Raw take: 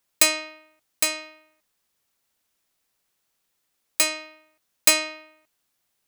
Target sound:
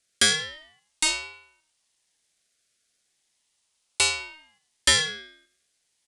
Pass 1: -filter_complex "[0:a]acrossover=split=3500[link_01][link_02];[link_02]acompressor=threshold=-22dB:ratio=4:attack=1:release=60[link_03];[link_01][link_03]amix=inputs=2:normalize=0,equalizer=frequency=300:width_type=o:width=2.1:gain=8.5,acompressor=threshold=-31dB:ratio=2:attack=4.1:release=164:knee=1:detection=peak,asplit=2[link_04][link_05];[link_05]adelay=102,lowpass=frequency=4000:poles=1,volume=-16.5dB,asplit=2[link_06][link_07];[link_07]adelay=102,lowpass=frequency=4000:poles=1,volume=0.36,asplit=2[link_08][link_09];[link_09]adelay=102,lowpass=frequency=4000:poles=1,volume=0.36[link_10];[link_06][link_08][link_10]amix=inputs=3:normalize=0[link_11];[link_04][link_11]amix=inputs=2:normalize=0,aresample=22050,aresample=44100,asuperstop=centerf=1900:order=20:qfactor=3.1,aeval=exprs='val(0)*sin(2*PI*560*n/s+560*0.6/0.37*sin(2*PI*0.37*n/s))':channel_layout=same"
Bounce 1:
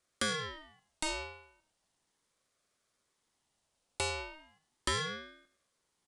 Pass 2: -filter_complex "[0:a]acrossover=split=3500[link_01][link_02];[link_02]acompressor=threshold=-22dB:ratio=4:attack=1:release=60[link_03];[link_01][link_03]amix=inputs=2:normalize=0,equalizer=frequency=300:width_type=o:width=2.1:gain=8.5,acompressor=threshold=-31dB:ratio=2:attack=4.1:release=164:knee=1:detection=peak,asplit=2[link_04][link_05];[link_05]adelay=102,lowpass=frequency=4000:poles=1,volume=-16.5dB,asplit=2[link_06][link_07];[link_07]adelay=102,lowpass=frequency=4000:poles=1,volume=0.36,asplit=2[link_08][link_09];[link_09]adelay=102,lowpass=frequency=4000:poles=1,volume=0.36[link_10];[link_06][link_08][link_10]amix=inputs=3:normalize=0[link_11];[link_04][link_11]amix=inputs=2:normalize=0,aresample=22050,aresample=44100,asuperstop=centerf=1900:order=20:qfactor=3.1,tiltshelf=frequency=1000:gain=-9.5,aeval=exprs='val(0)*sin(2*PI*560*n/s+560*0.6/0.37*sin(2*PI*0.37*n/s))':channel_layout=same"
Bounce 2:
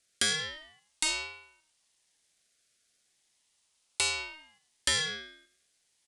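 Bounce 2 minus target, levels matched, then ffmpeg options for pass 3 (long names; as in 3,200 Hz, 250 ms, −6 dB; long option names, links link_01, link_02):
downward compressor: peak gain reduction +9.5 dB
-filter_complex "[0:a]acrossover=split=3500[link_01][link_02];[link_02]acompressor=threshold=-22dB:ratio=4:attack=1:release=60[link_03];[link_01][link_03]amix=inputs=2:normalize=0,equalizer=frequency=300:width_type=o:width=2.1:gain=8.5,asplit=2[link_04][link_05];[link_05]adelay=102,lowpass=frequency=4000:poles=1,volume=-16.5dB,asplit=2[link_06][link_07];[link_07]adelay=102,lowpass=frequency=4000:poles=1,volume=0.36,asplit=2[link_08][link_09];[link_09]adelay=102,lowpass=frequency=4000:poles=1,volume=0.36[link_10];[link_06][link_08][link_10]amix=inputs=3:normalize=0[link_11];[link_04][link_11]amix=inputs=2:normalize=0,aresample=22050,aresample=44100,asuperstop=centerf=1900:order=20:qfactor=3.1,tiltshelf=frequency=1000:gain=-9.5,aeval=exprs='val(0)*sin(2*PI*560*n/s+560*0.6/0.37*sin(2*PI*0.37*n/s))':channel_layout=same"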